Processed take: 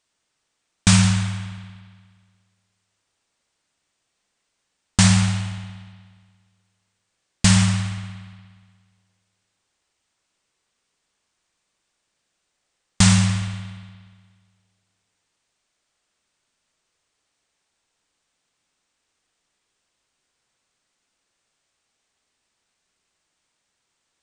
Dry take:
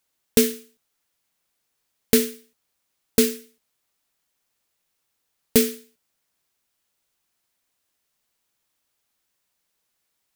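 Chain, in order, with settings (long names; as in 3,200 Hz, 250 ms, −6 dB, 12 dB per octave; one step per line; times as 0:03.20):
wrong playback speed 78 rpm record played at 33 rpm
spring reverb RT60 1.7 s, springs 59 ms, chirp 75 ms, DRR 5 dB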